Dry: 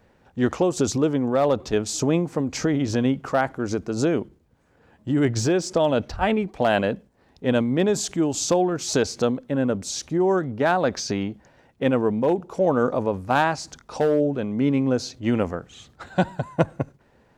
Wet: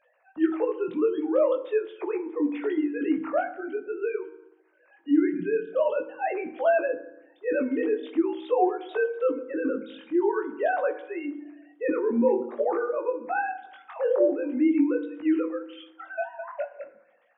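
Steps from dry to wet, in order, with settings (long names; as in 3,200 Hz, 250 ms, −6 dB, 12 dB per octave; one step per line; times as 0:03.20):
three sine waves on the formant tracks
chorus effect 0.46 Hz, delay 16 ms, depth 6.4 ms
on a send at −9 dB: convolution reverb RT60 0.80 s, pre-delay 3 ms
on the sum: one half of a high-frequency compander encoder only
level −2 dB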